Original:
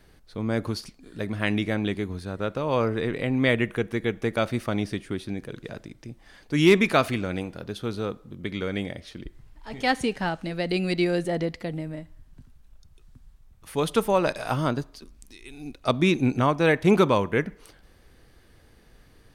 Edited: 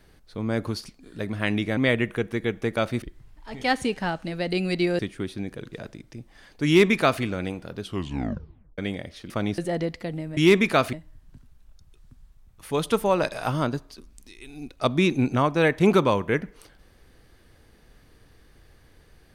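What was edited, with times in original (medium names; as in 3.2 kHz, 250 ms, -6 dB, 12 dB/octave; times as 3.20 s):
1.77–3.37 s: delete
4.62–4.90 s: swap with 9.21–11.18 s
6.57–7.13 s: copy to 11.97 s
7.72 s: tape stop 0.97 s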